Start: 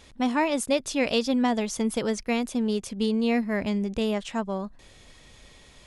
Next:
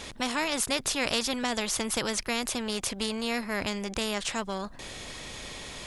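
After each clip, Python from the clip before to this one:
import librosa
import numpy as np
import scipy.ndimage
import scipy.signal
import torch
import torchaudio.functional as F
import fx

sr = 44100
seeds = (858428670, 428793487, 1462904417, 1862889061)

y = fx.spectral_comp(x, sr, ratio=2.0)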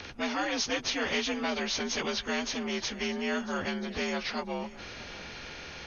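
y = fx.partial_stretch(x, sr, pct=86)
y = y + 10.0 ** (-18.0 / 20.0) * np.pad(y, (int(630 * sr / 1000.0), 0))[:len(y)]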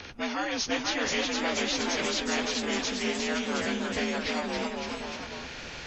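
y = fx.echo_pitch(x, sr, ms=514, semitones=1, count=3, db_per_echo=-3.0)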